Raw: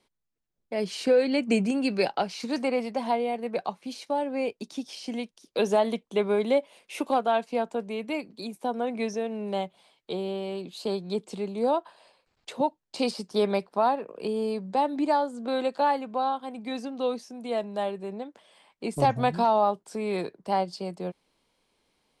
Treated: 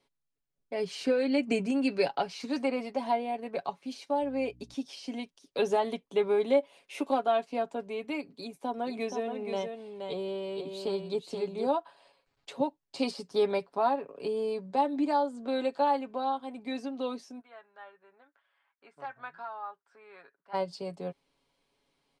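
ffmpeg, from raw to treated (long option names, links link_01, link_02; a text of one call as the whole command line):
ffmpeg -i in.wav -filter_complex "[0:a]asettb=1/sr,asplit=3[link_01][link_02][link_03];[link_01]atrim=end=4.224[link_04];[link_02]atrim=start=4.22:end=4.74,asetpts=PTS-STARTPTS,afade=type=in:duration=0.004:curve=qsin,afade=type=out:start_time=0.516:duration=0.004:curve=qsin,aeval=exprs='val(0)+0.00316*(sin(2*PI*60*n/s)+sin(2*PI*2*60*n/s)/2+sin(2*PI*3*60*n/s)/3+sin(2*PI*4*60*n/s)/4+sin(2*PI*5*60*n/s)/5)':channel_layout=same[link_05];[link_03]atrim=start=4.736[link_06];[link_04][link_05]acrossfade=duration=0.004:curve1=hsin:curve2=qsin[link_07];[link_07][link_06]acrossfade=duration=0.004:curve1=qsin:curve2=hsin,asplit=3[link_08][link_09][link_10];[link_08]afade=type=out:start_time=8.76:duration=0.02[link_11];[link_09]aecho=1:1:475:0.501,afade=type=in:start_time=8.76:duration=0.02,afade=type=out:start_time=11.73:duration=0.02[link_12];[link_10]afade=type=in:start_time=11.73:duration=0.02[link_13];[link_11][link_12][link_13]amix=inputs=3:normalize=0,asplit=3[link_14][link_15][link_16];[link_14]afade=type=out:start_time=17.39:duration=0.02[link_17];[link_15]bandpass=frequency=1500:width_type=q:width=4.4,afade=type=in:start_time=17.39:duration=0.02,afade=type=out:start_time=20.53:duration=0.02[link_18];[link_16]afade=type=in:start_time=20.53:duration=0.02[link_19];[link_17][link_18][link_19]amix=inputs=3:normalize=0,highshelf=frequency=9600:gain=-8,aecho=1:1:7.2:0.56,volume=-4.5dB" out.wav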